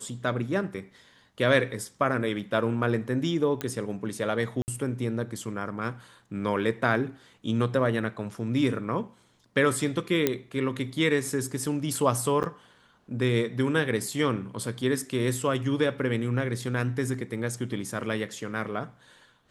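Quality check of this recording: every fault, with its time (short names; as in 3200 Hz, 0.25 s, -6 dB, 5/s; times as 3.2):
3.61 pop -15 dBFS
4.62–4.68 gap 59 ms
10.27 pop -8 dBFS
12.43–12.44 gap 9 ms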